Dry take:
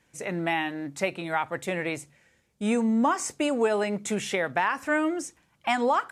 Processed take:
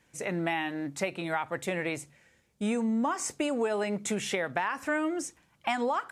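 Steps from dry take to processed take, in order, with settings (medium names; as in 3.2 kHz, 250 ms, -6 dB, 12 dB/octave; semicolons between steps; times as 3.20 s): compression 3:1, threshold -27 dBFS, peak gain reduction 6.5 dB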